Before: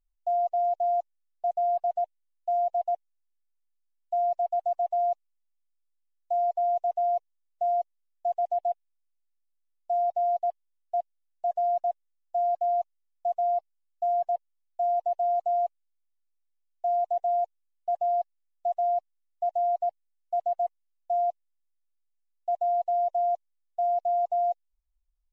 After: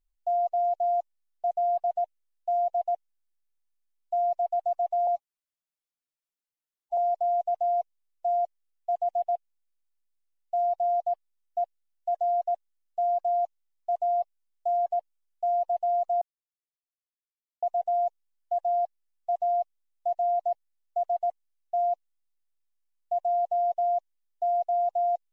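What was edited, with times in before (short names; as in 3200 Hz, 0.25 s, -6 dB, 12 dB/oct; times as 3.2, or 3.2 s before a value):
5.07–6.34 stretch 1.5×
15.58–16.99 mute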